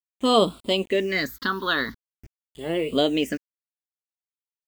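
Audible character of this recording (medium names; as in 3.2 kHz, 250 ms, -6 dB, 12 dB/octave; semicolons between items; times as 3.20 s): a quantiser's noise floor 8-bit, dither none; phasing stages 6, 0.45 Hz, lowest notch 600–1700 Hz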